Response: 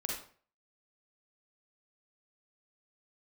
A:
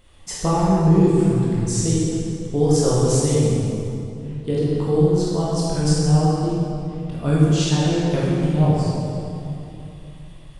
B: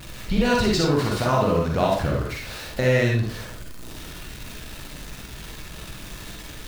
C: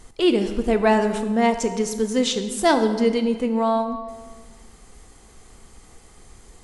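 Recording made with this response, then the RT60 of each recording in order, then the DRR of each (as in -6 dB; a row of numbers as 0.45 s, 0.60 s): B; 2.9 s, 0.45 s, 1.6 s; -7.5 dB, -2.0 dB, 8.0 dB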